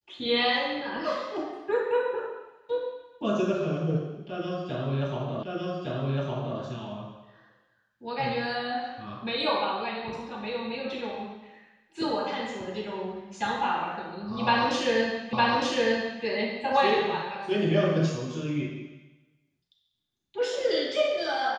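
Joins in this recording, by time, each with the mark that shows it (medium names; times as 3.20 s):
5.43 s: repeat of the last 1.16 s
15.33 s: repeat of the last 0.91 s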